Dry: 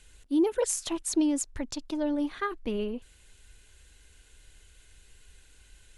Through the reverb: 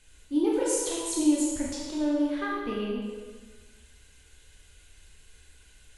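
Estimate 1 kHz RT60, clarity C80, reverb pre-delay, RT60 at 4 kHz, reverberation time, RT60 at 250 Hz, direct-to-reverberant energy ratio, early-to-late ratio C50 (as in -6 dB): 1.4 s, 2.0 dB, 7 ms, 1.3 s, 1.4 s, 1.5 s, -5.5 dB, -0.5 dB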